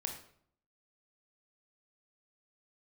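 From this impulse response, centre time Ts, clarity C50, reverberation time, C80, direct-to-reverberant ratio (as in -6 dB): 23 ms, 7.0 dB, 0.60 s, 10.0 dB, 2.5 dB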